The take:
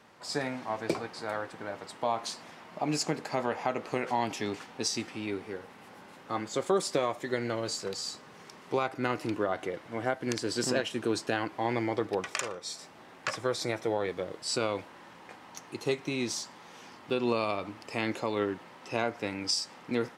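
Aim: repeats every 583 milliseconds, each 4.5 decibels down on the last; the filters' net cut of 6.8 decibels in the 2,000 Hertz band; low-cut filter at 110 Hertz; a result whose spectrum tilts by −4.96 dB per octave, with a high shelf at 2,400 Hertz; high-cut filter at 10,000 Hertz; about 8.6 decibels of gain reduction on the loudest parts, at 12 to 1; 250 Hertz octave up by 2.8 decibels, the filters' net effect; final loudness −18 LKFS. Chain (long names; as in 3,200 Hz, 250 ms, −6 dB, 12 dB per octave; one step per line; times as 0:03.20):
high-pass filter 110 Hz
low-pass filter 10,000 Hz
parametric band 250 Hz +4 dB
parametric band 2,000 Hz −5 dB
high-shelf EQ 2,400 Hz −8 dB
downward compressor 12 to 1, threshold −30 dBFS
repeating echo 583 ms, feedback 60%, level −4.5 dB
level +18 dB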